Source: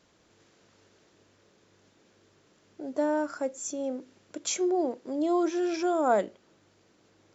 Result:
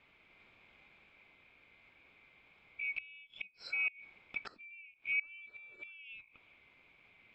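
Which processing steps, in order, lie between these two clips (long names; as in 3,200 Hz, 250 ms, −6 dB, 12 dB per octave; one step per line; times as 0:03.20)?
neighbouring bands swapped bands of 2,000 Hz
gate with flip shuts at −23 dBFS, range −26 dB
high-frequency loss of the air 440 metres
level +4.5 dB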